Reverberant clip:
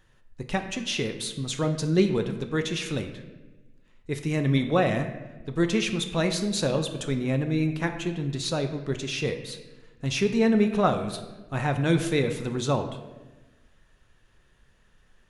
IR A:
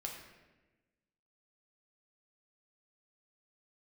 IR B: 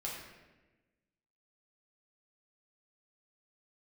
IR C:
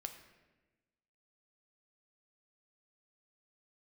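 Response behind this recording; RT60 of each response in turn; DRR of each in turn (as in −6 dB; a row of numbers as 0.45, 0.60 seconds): C; 1.2, 1.2, 1.2 seconds; −0.5, −4.5, 6.0 decibels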